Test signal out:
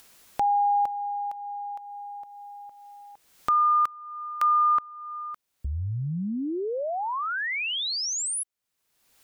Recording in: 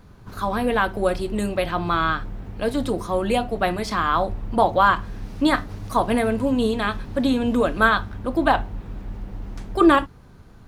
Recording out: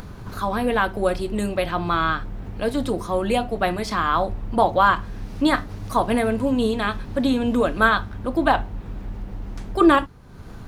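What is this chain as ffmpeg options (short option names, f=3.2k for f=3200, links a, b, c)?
-af "acompressor=mode=upward:threshold=-27dB:ratio=2.5"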